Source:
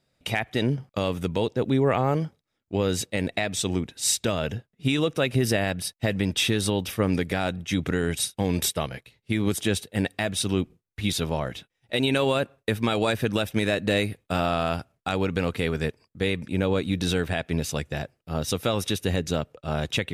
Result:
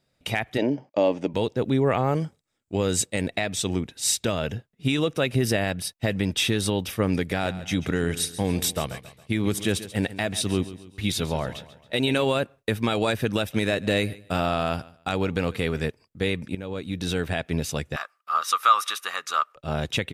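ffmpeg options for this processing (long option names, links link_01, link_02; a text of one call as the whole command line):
ffmpeg -i in.wav -filter_complex "[0:a]asplit=3[link_01][link_02][link_03];[link_01]afade=type=out:start_time=0.57:duration=0.02[link_04];[link_02]highpass=240,equalizer=frequency=290:width_type=q:width=4:gain=9,equalizer=frequency=600:width_type=q:width=4:gain=10,equalizer=frequency=870:width_type=q:width=4:gain=7,equalizer=frequency=1300:width_type=q:width=4:gain=-10,equalizer=frequency=3700:width_type=q:width=4:gain=-9,lowpass=frequency=6200:width=0.5412,lowpass=frequency=6200:width=1.3066,afade=type=in:start_time=0.57:duration=0.02,afade=type=out:start_time=1.33:duration=0.02[link_05];[link_03]afade=type=in:start_time=1.33:duration=0.02[link_06];[link_04][link_05][link_06]amix=inputs=3:normalize=0,asettb=1/sr,asplit=3[link_07][link_08][link_09];[link_07]atrim=end=2.154[link_10];[link_08]atrim=start=2.15:end=3.21,asetpts=PTS-STARTPTS,afade=type=in:duration=0.004:curve=qsin,afade=type=out:start_time=1.056:duration=0.004:curve=qsin,equalizer=frequency=7900:width=2.5:gain=10.5[link_11];[link_09]atrim=start=3.206[link_12];[link_10][link_11]acrossfade=duration=0.004:curve1=hsin:curve2=qsin[link_13];[link_13][link_12]acrossfade=duration=0.004:curve1=qsin:curve2=hsin,asplit=3[link_14][link_15][link_16];[link_14]afade=type=out:start_time=7.41:duration=0.02[link_17];[link_15]aecho=1:1:137|274|411|548:0.178|0.0765|0.0329|0.0141,afade=type=in:start_time=7.41:duration=0.02,afade=type=out:start_time=12.21:duration=0.02[link_18];[link_16]afade=type=in:start_time=12.21:duration=0.02[link_19];[link_17][link_18][link_19]amix=inputs=3:normalize=0,asettb=1/sr,asplit=3[link_20][link_21][link_22];[link_20]atrim=end=13.384[link_23];[link_21]atrim=start=13.38:end=15.86,asetpts=PTS-STARTPTS,afade=type=in:duration=0.004:curve=qsin,afade=type=out:start_time=2.476:duration=0.004:curve=qsin,aecho=1:1:148|296:0.0841|0.0185,atrim=end_sample=109368[link_24];[link_22]atrim=start=15.856[link_25];[link_23][link_24]acrossfade=duration=0.004:curve1=hsin:curve2=qsin[link_26];[link_26][link_25]acrossfade=duration=0.004:curve1=qsin:curve2=hsin,asettb=1/sr,asplit=3[link_27][link_28][link_29];[link_27]atrim=end=17.964[link_30];[link_28]atrim=start=17.96:end=19.56,asetpts=PTS-STARTPTS,afade=type=in:duration=0.004:curve=qsin,afade=type=out:start_time=1.596:duration=0.004:curve=qsin,highpass=frequency=1200:width_type=q:width=14[link_31];[link_29]atrim=start=19.556[link_32];[link_30][link_31]acrossfade=duration=0.004:curve1=hsin:curve2=qsin[link_33];[link_33][link_32]acrossfade=duration=0.004:curve1=qsin:curve2=hsin,asplit=2[link_34][link_35];[link_34]atrim=end=16.55,asetpts=PTS-STARTPTS,afade=type=out:start_time=16.546:duration=0.004:curve=hsin:silence=0.188365[link_36];[link_35]atrim=start=16.55,asetpts=PTS-STARTPTS,afade=type=in:duration=0.77:silence=0.188365[link_37];[link_36][link_37]concat=n=2:v=0:a=1" out.wav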